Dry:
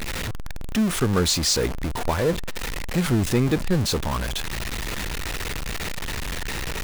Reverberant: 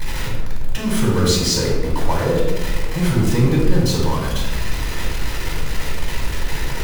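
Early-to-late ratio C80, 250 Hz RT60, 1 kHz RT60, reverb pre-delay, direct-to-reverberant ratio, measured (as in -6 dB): 4.5 dB, 1.7 s, 1.1 s, 3 ms, -4.5 dB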